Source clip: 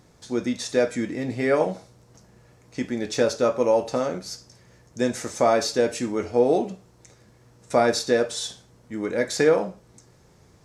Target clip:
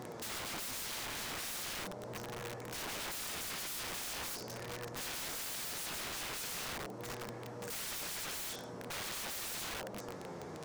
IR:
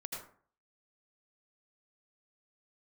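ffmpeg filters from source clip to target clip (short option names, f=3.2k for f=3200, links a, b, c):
-filter_complex "[0:a]highshelf=f=4.5k:g=-5.5,asplit=2[a][b];[1:a]atrim=start_sample=2205,lowpass=2.4k[c];[b][c]afir=irnorm=-1:irlink=0,volume=-9.5dB[d];[a][d]amix=inputs=2:normalize=0,flanger=delay=8:depth=5.2:regen=56:speed=0.42:shape=triangular,alimiter=limit=-14.5dB:level=0:latency=1:release=375,highpass=150,bandreject=f=300.4:t=h:w=4,bandreject=f=600.8:t=h:w=4,bandreject=f=901.2:t=h:w=4,bandreject=f=1.2016k:t=h:w=4,bandreject=f=1.502k:t=h:w=4,bandreject=f=1.8024k:t=h:w=4,bandreject=f=2.1028k:t=h:w=4,bandreject=f=2.4032k:t=h:w=4,bandreject=f=2.7036k:t=h:w=4,bandreject=f=3.004k:t=h:w=4,bandreject=f=3.3044k:t=h:w=4,bandreject=f=3.6048k:t=h:w=4,bandreject=f=3.9052k:t=h:w=4,bandreject=f=4.2056k:t=h:w=4,bandreject=f=4.506k:t=h:w=4,bandreject=f=4.8064k:t=h:w=4,bandreject=f=5.1068k:t=h:w=4,bandreject=f=5.4072k:t=h:w=4,bandreject=f=5.7076k:t=h:w=4,bandreject=f=6.008k:t=h:w=4,bandreject=f=6.3084k:t=h:w=4,bandreject=f=6.6088k:t=h:w=4,bandreject=f=6.9092k:t=h:w=4,bandreject=f=7.2096k:t=h:w=4,bandreject=f=7.51k:t=h:w=4,bandreject=f=7.8104k:t=h:w=4,bandreject=f=8.1108k:t=h:w=4,bandreject=f=8.4112k:t=h:w=4,bandreject=f=8.7116k:t=h:w=4,bandreject=f=9.012k:t=h:w=4,bandreject=f=9.3124k:t=h:w=4,bandreject=f=9.6128k:t=h:w=4,bandreject=f=9.9132k:t=h:w=4,bandreject=f=10.2136k:t=h:w=4,bandreject=f=10.514k:t=h:w=4,bandreject=f=10.8144k:t=h:w=4,bandreject=f=11.1148k:t=h:w=4,bandreject=f=11.4152k:t=h:w=4,bandreject=f=11.7156k:t=h:w=4,acompressor=threshold=-46dB:ratio=2.5,asoftclip=type=tanh:threshold=-30dB,equalizer=f=660:w=0.42:g=8,aeval=exprs='(mod(200*val(0)+1,2)-1)/200':c=same,volume=9.5dB"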